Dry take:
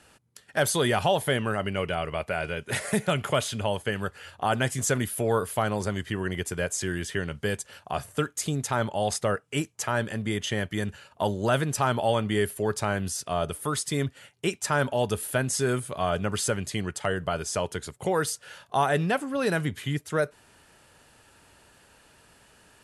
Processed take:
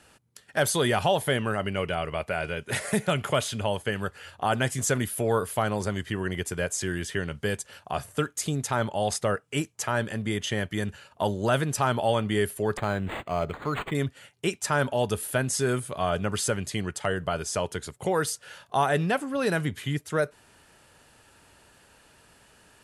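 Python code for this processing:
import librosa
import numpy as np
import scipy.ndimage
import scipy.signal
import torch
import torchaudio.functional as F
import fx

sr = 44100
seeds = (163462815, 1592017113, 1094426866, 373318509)

y = fx.resample_linear(x, sr, factor=8, at=(12.77, 13.95))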